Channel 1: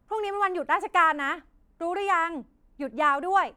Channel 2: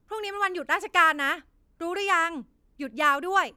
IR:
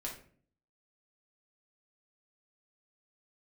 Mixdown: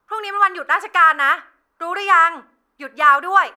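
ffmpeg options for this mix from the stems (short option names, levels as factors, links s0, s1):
-filter_complex "[0:a]volume=0.106,asplit=2[s0][s1];[s1]volume=0.562[s2];[1:a]highpass=500,alimiter=limit=0.178:level=0:latency=1:release=65,adelay=0.5,volume=1.12,asplit=2[s3][s4];[s4]volume=0.211[s5];[2:a]atrim=start_sample=2205[s6];[s2][s5]amix=inputs=2:normalize=0[s7];[s7][s6]afir=irnorm=-1:irlink=0[s8];[s0][s3][s8]amix=inputs=3:normalize=0,equalizer=f=1200:t=o:w=1.2:g=14,bandreject=f=7000:w=15"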